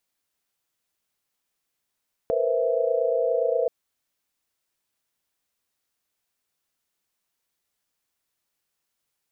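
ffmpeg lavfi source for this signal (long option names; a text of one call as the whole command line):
ffmpeg -f lavfi -i "aevalsrc='0.0501*(sin(2*PI*466.16*t)+sin(2*PI*493.88*t)+sin(2*PI*523.25*t)+sin(2*PI*659.26*t))':duration=1.38:sample_rate=44100" out.wav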